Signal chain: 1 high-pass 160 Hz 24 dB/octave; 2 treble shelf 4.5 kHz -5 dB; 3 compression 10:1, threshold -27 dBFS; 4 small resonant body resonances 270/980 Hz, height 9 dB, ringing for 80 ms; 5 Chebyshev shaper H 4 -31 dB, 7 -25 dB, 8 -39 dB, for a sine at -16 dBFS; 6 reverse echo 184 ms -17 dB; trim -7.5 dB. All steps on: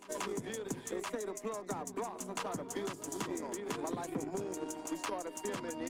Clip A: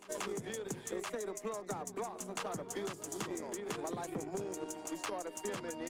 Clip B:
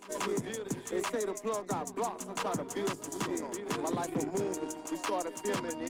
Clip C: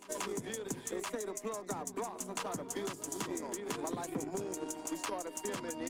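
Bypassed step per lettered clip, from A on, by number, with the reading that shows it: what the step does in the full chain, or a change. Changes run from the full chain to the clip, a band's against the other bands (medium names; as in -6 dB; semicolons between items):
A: 4, 250 Hz band -2.0 dB; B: 3, mean gain reduction 3.0 dB; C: 2, 8 kHz band +3.5 dB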